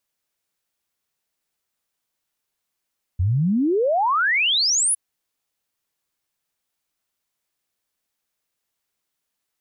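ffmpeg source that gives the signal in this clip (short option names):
-f lavfi -i "aevalsrc='0.15*clip(min(t,1.76-t)/0.01,0,1)*sin(2*PI*83*1.76/log(11000/83)*(exp(log(11000/83)*t/1.76)-1))':d=1.76:s=44100"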